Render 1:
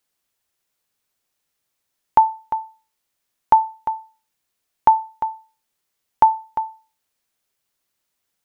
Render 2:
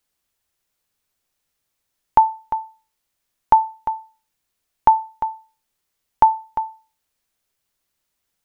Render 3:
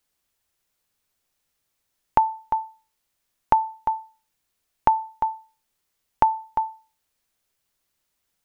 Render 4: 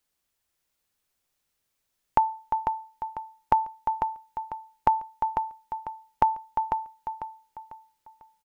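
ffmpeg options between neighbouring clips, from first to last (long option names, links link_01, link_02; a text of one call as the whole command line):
ffmpeg -i in.wav -af "lowshelf=frequency=77:gain=10" out.wav
ffmpeg -i in.wav -af "acompressor=threshold=-16dB:ratio=3" out.wav
ffmpeg -i in.wav -af "aecho=1:1:497|994|1491|1988:0.447|0.156|0.0547|0.0192,volume=-3dB" out.wav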